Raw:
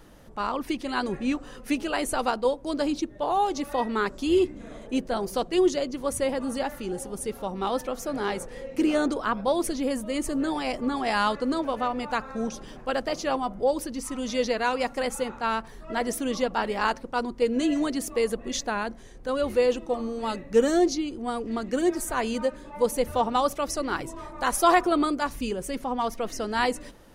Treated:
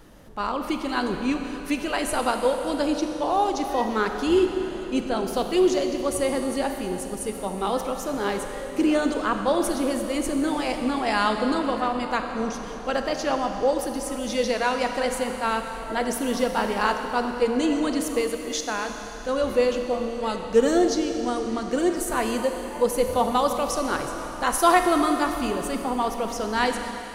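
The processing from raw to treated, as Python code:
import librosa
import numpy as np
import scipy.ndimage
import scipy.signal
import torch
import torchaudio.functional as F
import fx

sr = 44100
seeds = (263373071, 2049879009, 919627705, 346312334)

y = fx.low_shelf(x, sr, hz=500.0, db=-7.0, at=(18.21, 18.9))
y = fx.rev_schroeder(y, sr, rt60_s=3.5, comb_ms=29, drr_db=5.0)
y = y * 10.0 ** (1.5 / 20.0)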